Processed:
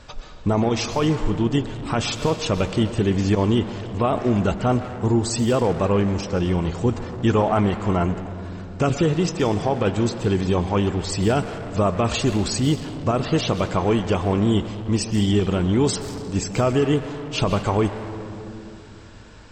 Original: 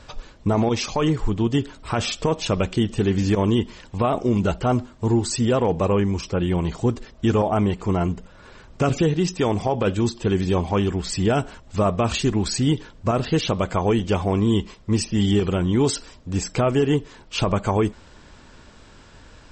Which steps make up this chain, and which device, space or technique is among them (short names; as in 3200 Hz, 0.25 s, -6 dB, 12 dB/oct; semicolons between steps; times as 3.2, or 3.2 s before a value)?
saturated reverb return (on a send at -3.5 dB: reverb RT60 2.1 s, pre-delay 0.115 s + soft clip -25.5 dBFS, distortion -7 dB); 6.91–8.13 on the sum: bell 1400 Hz +3.5 dB 1.8 oct